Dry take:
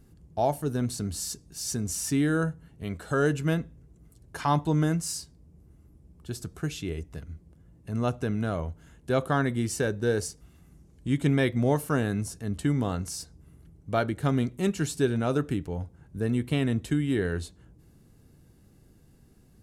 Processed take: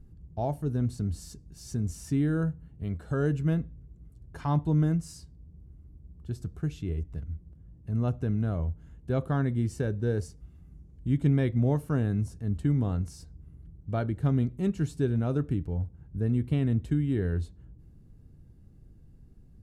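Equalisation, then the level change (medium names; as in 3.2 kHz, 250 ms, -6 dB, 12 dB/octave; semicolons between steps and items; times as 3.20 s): tilt EQ -2 dB/octave; bass shelf 190 Hz +7.5 dB; -8.5 dB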